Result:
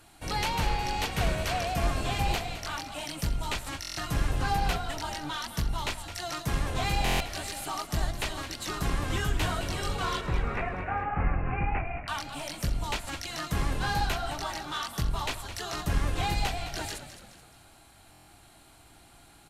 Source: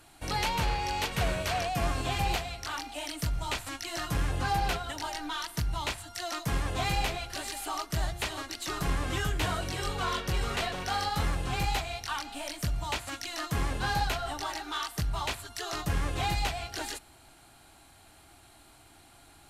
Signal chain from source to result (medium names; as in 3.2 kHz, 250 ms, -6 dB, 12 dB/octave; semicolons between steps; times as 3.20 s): octave divider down 1 oct, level -2 dB; 10.21–12.08 s: steep low-pass 2.6 kHz 96 dB/octave; frequency-shifting echo 213 ms, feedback 44%, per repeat -60 Hz, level -11.5 dB; buffer glitch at 3.81/7.04/18.11 s, samples 1024, times 6